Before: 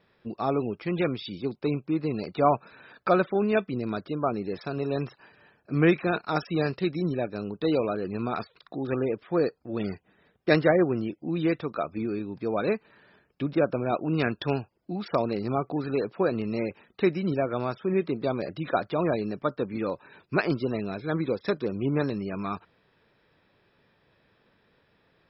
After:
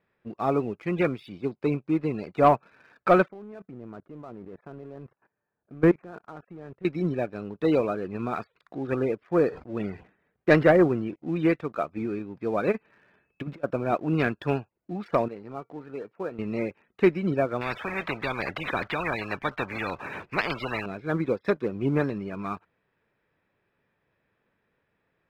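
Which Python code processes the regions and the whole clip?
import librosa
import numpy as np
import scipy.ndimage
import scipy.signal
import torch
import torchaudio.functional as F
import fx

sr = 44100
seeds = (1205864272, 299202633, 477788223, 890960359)

y = fx.chain(x, sr, fx.lowpass(hz=1300.0, slope=12),
    fx.level_steps(step_db=19), at=(3.28, 6.85))
y = fx.chain(y, sr, fx.air_absorb(metres=120.0),
    fx.sustainer(db_per_s=120.0), at=(9.24, 11.16))
y = fx.over_compress(y, sr, threshold_db=-30.0, ratio=-0.5, at=(12.71, 13.63), fade=0.02)
y = fx.dmg_tone(y, sr, hz=2600.0, level_db=-67.0, at=(12.71, 13.63), fade=0.02)
y = fx.chain(y, sr, fx.highpass(hz=130.0, slope=6),
    fx.high_shelf(hz=4000.0, db=-8.5),
    fx.comb_fb(f0_hz=460.0, decay_s=0.2, harmonics='all', damping=0.0, mix_pct=60), at=(15.28, 16.39))
y = fx.chain(y, sr, fx.air_absorb(metres=250.0),
    fx.notch(hz=1400.0, q=22.0),
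    fx.spectral_comp(ratio=4.0), at=(17.61, 20.86))
y = fx.high_shelf_res(y, sr, hz=3000.0, db=-7.0, q=1.5)
y = fx.leveller(y, sr, passes=1)
y = fx.upward_expand(y, sr, threshold_db=-31.0, expansion=1.5)
y = F.gain(torch.from_numpy(y), 1.0).numpy()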